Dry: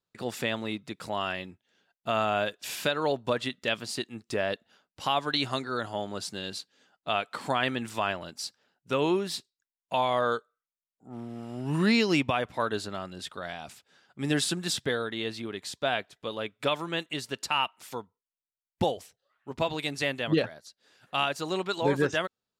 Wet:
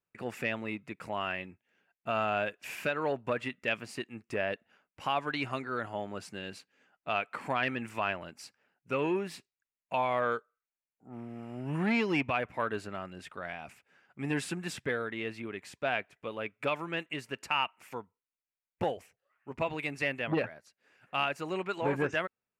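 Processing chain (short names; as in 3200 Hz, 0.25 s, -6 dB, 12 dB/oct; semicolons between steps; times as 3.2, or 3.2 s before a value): resonant high shelf 3000 Hz -6.5 dB, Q 3; core saturation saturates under 640 Hz; gain -3.5 dB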